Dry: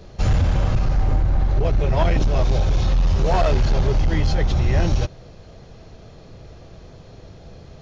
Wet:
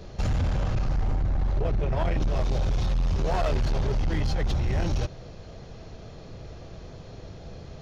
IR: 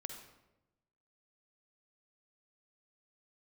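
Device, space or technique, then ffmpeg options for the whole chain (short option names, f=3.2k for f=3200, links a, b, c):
limiter into clipper: -filter_complex "[0:a]alimiter=limit=-18.5dB:level=0:latency=1:release=34,asoftclip=type=hard:threshold=-21dB,asettb=1/sr,asplit=3[a][b][c];[a]atrim=end=1.614[d];[b]atrim=start=1.61:end=2.28,asetpts=PTS-STARTPTS,afade=t=in:d=0.004:c=qsin,afade=t=out:st=0.666:d=0.004:c=qsin,highshelf=f=4k:g=-7[e];[c]atrim=start=2.276[f];[d][e]acrossfade=d=0.004:c1=hsin:c2=qsin[g];[g][f]acrossfade=d=0.004:c1=qsin:c2=hsin"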